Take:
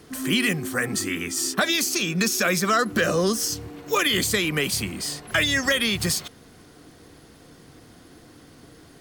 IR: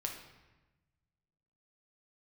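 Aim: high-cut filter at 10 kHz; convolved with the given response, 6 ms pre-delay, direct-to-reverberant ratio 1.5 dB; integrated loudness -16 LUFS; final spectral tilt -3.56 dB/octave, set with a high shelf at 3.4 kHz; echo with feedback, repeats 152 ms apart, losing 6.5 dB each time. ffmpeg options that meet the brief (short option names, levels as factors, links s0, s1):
-filter_complex "[0:a]lowpass=10000,highshelf=f=3400:g=6,aecho=1:1:152|304|456|608|760|912:0.473|0.222|0.105|0.0491|0.0231|0.0109,asplit=2[s0][s1];[1:a]atrim=start_sample=2205,adelay=6[s2];[s1][s2]afir=irnorm=-1:irlink=0,volume=0.794[s3];[s0][s3]amix=inputs=2:normalize=0,volume=1.19"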